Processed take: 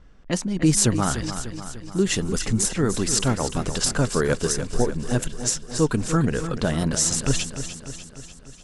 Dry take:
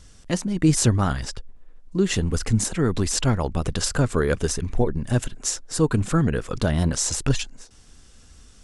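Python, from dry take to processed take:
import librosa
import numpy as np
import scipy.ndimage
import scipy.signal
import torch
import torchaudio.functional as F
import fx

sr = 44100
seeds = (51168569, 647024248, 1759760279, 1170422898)

p1 = fx.high_shelf(x, sr, hz=6600.0, db=6.0)
p2 = fx.env_lowpass(p1, sr, base_hz=1600.0, full_db=-17.5)
p3 = fx.peak_eq(p2, sr, hz=86.0, db=-10.5, octaves=0.62)
y = p3 + fx.echo_feedback(p3, sr, ms=297, feedback_pct=58, wet_db=-10.5, dry=0)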